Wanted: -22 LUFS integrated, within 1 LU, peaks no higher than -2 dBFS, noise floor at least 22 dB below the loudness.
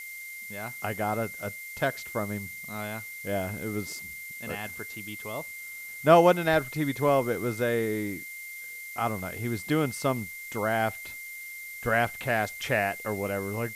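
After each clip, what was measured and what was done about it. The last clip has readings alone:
steady tone 2100 Hz; tone level -39 dBFS; noise floor -41 dBFS; noise floor target -51 dBFS; loudness -29.0 LUFS; peak -5.0 dBFS; loudness target -22.0 LUFS
-> notch 2100 Hz, Q 30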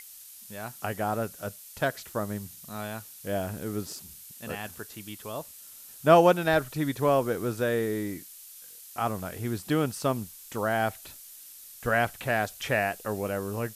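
steady tone none; noise floor -48 dBFS; noise floor target -51 dBFS
-> denoiser 6 dB, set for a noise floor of -48 dBFS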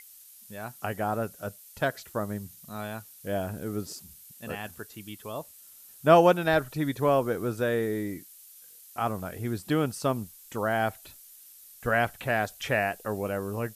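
noise floor -52 dBFS; loudness -28.5 LUFS; peak -5.5 dBFS; loudness target -22.0 LUFS
-> gain +6.5 dB; limiter -2 dBFS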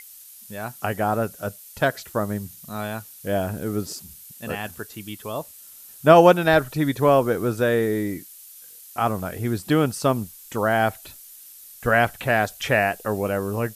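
loudness -22.5 LUFS; peak -2.0 dBFS; noise floor -45 dBFS

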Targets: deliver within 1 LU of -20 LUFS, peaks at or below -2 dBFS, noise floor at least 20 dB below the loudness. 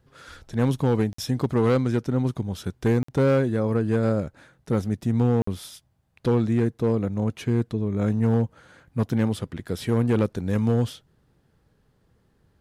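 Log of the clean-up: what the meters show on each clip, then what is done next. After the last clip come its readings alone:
clipped 1.7%; flat tops at -15.0 dBFS; dropouts 3; longest dropout 54 ms; loudness -24.5 LUFS; peak -15.0 dBFS; loudness target -20.0 LUFS
-> clip repair -15 dBFS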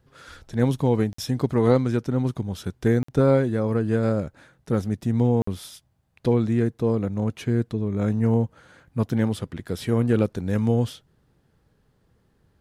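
clipped 0.0%; dropouts 3; longest dropout 54 ms
-> interpolate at 1.13/3.03/5.42, 54 ms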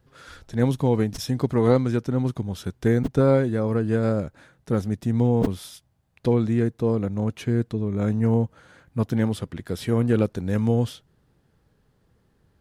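dropouts 0; loudness -24.0 LUFS; peak -7.0 dBFS; loudness target -20.0 LUFS
-> gain +4 dB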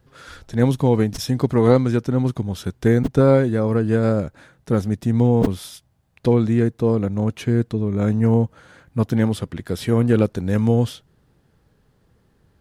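loudness -20.0 LUFS; peak -3.0 dBFS; noise floor -62 dBFS

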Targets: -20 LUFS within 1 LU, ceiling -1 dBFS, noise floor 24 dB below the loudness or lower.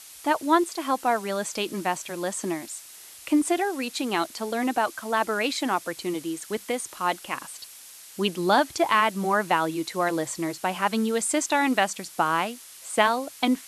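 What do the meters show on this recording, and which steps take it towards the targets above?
noise floor -46 dBFS; noise floor target -50 dBFS; loudness -26.0 LUFS; peak -4.5 dBFS; loudness target -20.0 LUFS
-> noise print and reduce 6 dB; gain +6 dB; limiter -1 dBFS

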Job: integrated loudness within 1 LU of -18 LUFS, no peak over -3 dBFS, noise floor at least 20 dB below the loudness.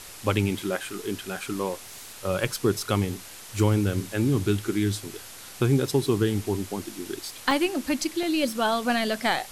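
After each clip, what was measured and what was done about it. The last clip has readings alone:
dropouts 4; longest dropout 1.8 ms; noise floor -43 dBFS; noise floor target -47 dBFS; loudness -26.5 LUFS; peak -9.5 dBFS; loudness target -18.0 LUFS
-> interpolate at 0.24/7.51/8.23/9.22, 1.8 ms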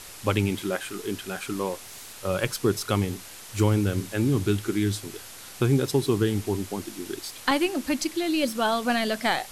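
dropouts 0; noise floor -43 dBFS; noise floor target -47 dBFS
-> denoiser 6 dB, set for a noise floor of -43 dBFS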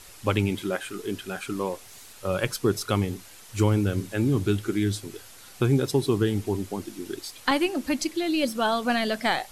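noise floor -48 dBFS; loudness -26.5 LUFS; peak -10.0 dBFS; loudness target -18.0 LUFS
-> gain +8.5 dB; limiter -3 dBFS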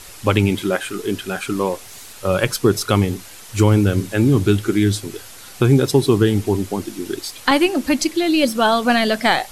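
loudness -18.5 LUFS; peak -3.0 dBFS; noise floor -39 dBFS

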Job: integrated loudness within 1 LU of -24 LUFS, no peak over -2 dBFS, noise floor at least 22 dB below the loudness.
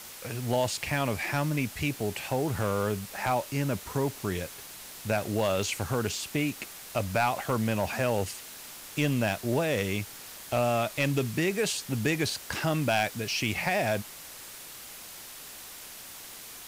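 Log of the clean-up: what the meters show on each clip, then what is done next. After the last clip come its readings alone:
clipped 0.2%; flat tops at -17.5 dBFS; noise floor -45 dBFS; noise floor target -52 dBFS; loudness -29.5 LUFS; peak -17.5 dBFS; loudness target -24.0 LUFS
-> clip repair -17.5 dBFS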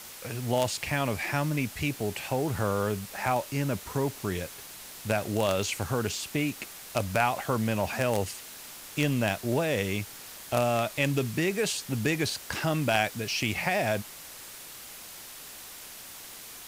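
clipped 0.0%; noise floor -45 dBFS; noise floor target -51 dBFS
-> noise print and reduce 6 dB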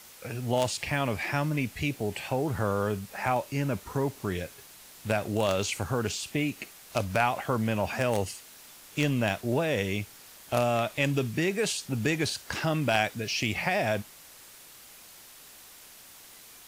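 noise floor -51 dBFS; loudness -29.0 LUFS; peak -8.5 dBFS; loudness target -24.0 LUFS
-> gain +5 dB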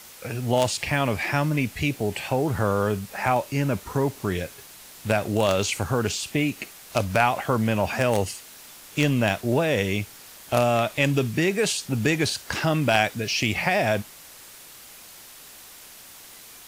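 loudness -24.0 LUFS; peak -3.5 dBFS; noise floor -46 dBFS

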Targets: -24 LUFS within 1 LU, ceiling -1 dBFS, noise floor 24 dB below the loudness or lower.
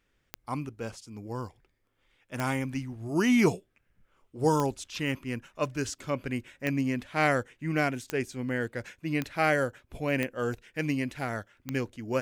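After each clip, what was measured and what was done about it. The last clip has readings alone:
clicks 8; loudness -30.5 LUFS; peak -12.0 dBFS; loudness target -24.0 LUFS
-> de-click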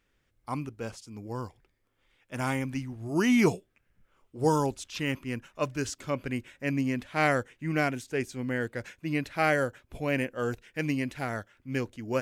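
clicks 0; loudness -30.5 LUFS; peak -12.0 dBFS; loudness target -24.0 LUFS
-> gain +6.5 dB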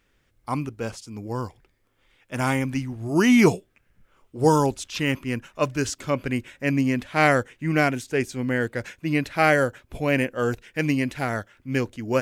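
loudness -24.0 LUFS; peak -5.5 dBFS; noise floor -67 dBFS

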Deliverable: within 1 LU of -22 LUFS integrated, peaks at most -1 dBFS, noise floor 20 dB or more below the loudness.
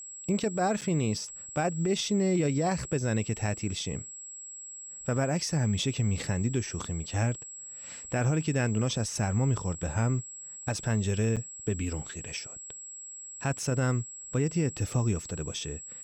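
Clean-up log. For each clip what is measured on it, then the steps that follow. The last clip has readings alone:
dropouts 2; longest dropout 7.3 ms; steady tone 7700 Hz; tone level -41 dBFS; loudness -30.0 LUFS; peak -17.5 dBFS; loudness target -22.0 LUFS
-> interpolate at 0.81/11.36, 7.3 ms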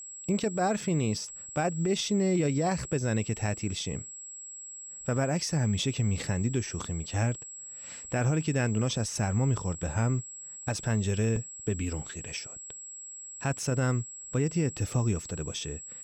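dropouts 0; steady tone 7700 Hz; tone level -41 dBFS
-> notch 7700 Hz, Q 30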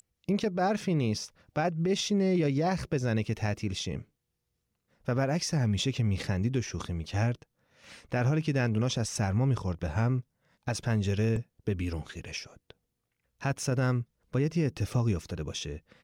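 steady tone none; loudness -30.5 LUFS; peak -18.0 dBFS; loudness target -22.0 LUFS
-> gain +8.5 dB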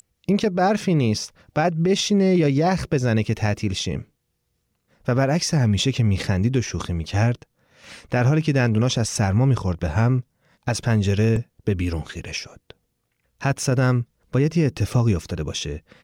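loudness -22.0 LUFS; peak -9.5 dBFS; noise floor -73 dBFS

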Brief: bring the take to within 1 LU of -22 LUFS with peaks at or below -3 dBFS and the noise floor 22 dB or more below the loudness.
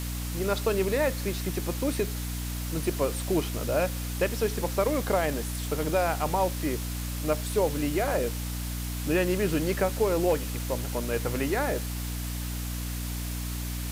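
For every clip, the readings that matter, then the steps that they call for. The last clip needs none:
hum 60 Hz; harmonics up to 300 Hz; hum level -31 dBFS; noise floor -33 dBFS; noise floor target -51 dBFS; loudness -29.0 LUFS; peak -12.5 dBFS; loudness target -22.0 LUFS
-> de-hum 60 Hz, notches 5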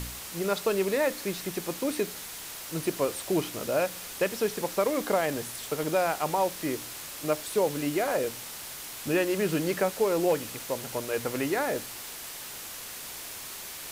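hum none; noise floor -41 dBFS; noise floor target -52 dBFS
-> denoiser 11 dB, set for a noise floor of -41 dBFS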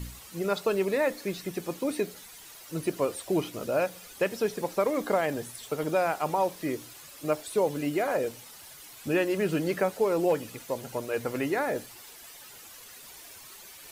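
noise floor -48 dBFS; noise floor target -52 dBFS
-> denoiser 6 dB, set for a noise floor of -48 dBFS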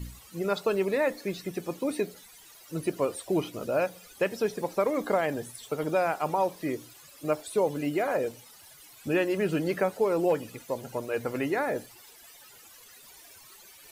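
noise floor -53 dBFS; loudness -29.5 LUFS; peak -14.0 dBFS; loudness target -22.0 LUFS
-> gain +7.5 dB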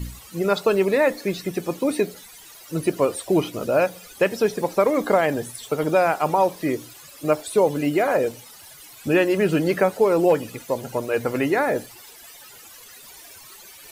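loudness -22.0 LUFS; peak -6.5 dBFS; noise floor -45 dBFS

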